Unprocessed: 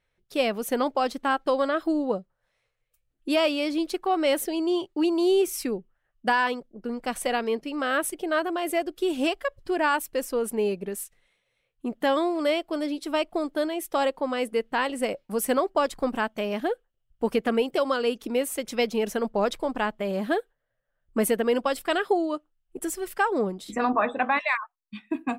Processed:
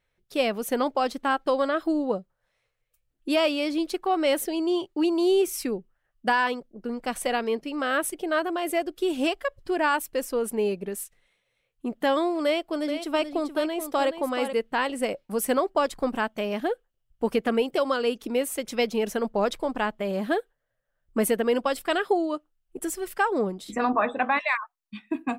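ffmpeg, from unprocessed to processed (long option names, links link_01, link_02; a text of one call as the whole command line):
ffmpeg -i in.wav -filter_complex "[0:a]asettb=1/sr,asplit=3[link_01][link_02][link_03];[link_01]atrim=end=12.454[link_04];[link_02]atrim=start=12.45:end=14.53,asetpts=PTS-STARTPTS,afade=type=in:duration=0.004:curve=qsin,afade=type=out:start_time=2.076:duration=0.004:curve=qsin,aecho=1:1:429:0.355,atrim=end_sample=91728[link_05];[link_03]atrim=start=14.526[link_06];[link_04][link_05]acrossfade=duration=0.004:curve1=hsin:curve2=qsin[link_07];[link_07][link_06]acrossfade=duration=0.004:curve1=qsin:curve2=hsin" out.wav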